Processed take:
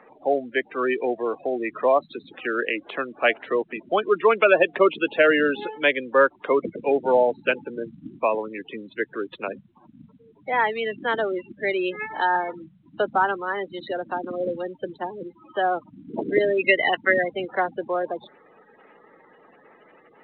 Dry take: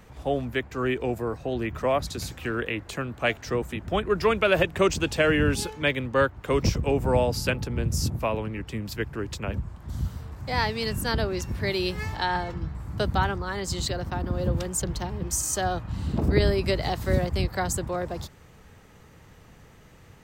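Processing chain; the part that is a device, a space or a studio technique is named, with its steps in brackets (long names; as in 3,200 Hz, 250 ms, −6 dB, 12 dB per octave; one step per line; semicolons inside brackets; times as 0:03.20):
gate on every frequency bin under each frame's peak −20 dB strong
high-pass filter 250 Hz 12 dB per octave
0:16.57–0:17.28: flat-topped bell 2,100 Hz +13 dB
telephone (band-pass filter 310–3,400 Hz; level +6 dB; mu-law 64 kbit/s 8,000 Hz)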